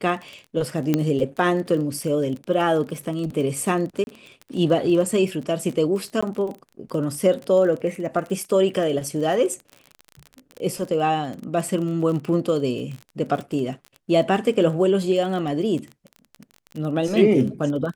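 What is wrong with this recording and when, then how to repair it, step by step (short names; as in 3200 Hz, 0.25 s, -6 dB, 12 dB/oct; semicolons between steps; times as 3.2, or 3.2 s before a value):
crackle 26/s -29 dBFS
0.94 pop -7 dBFS
4.04–4.07 gap 31 ms
6.21–6.22 gap 15 ms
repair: de-click; interpolate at 4.04, 31 ms; interpolate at 6.21, 15 ms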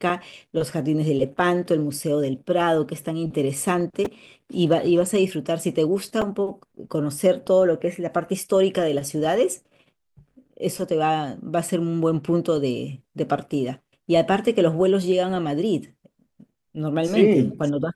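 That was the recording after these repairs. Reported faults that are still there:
none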